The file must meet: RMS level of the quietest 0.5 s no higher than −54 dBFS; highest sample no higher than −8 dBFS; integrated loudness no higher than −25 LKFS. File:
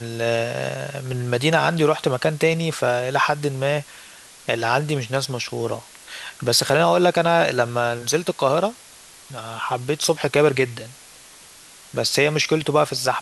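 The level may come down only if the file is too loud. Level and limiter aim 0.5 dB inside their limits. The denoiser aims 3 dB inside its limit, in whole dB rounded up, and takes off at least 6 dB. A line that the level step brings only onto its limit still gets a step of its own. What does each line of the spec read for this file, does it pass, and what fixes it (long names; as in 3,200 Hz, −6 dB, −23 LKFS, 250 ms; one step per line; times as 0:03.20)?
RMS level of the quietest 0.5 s −46 dBFS: out of spec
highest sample −4.0 dBFS: out of spec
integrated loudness −21.0 LKFS: out of spec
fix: broadband denoise 7 dB, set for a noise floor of −46 dBFS
level −4.5 dB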